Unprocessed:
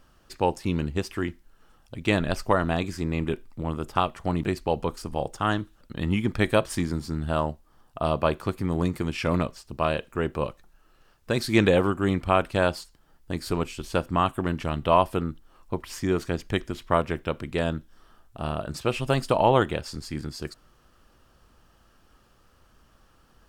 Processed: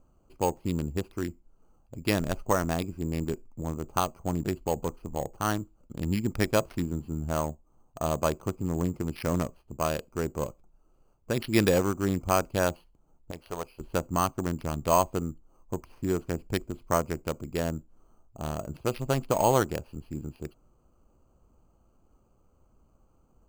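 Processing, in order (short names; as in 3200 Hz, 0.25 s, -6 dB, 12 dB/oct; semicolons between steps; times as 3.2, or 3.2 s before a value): Wiener smoothing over 25 samples; 13.31–13.8 resonant low shelf 420 Hz -10.5 dB, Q 1.5; careless resampling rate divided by 6×, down none, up hold; gain -3 dB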